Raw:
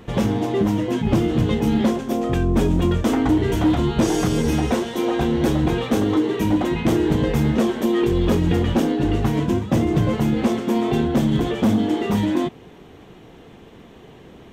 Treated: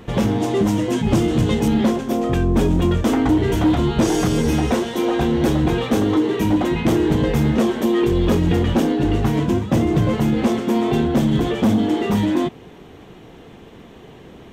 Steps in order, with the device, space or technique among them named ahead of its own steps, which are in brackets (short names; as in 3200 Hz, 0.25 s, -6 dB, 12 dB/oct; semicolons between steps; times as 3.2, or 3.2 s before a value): parallel distortion (in parallel at -10 dB: hard clip -20 dBFS, distortion -9 dB); 0.4–1.68 on the sum: bell 8000 Hz +7.5 dB 1.4 oct